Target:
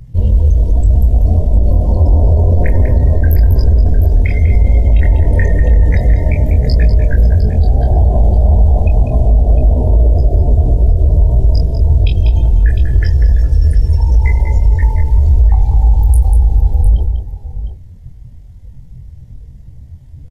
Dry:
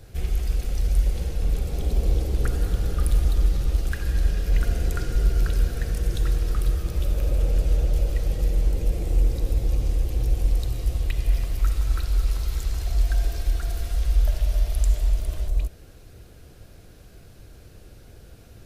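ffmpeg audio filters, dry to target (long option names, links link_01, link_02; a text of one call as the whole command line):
ffmpeg -i in.wav -filter_complex "[0:a]afftdn=noise_reduction=23:noise_floor=-35,equalizer=frequency=120:width=3.7:gain=-4,asetrate=62367,aresample=44100,atempo=0.707107,asplit=2[link_01][link_02];[link_02]adelay=22,volume=-6dB[link_03];[link_01][link_03]amix=inputs=2:normalize=0,asplit=2[link_04][link_05];[link_05]aecho=0:1:179|648:0.316|0.2[link_06];[link_04][link_06]amix=inputs=2:normalize=0,aresample=32000,aresample=44100,asetrate=40517,aresample=44100,alimiter=level_in=15.5dB:limit=-1dB:release=50:level=0:latency=1,volume=-1dB" out.wav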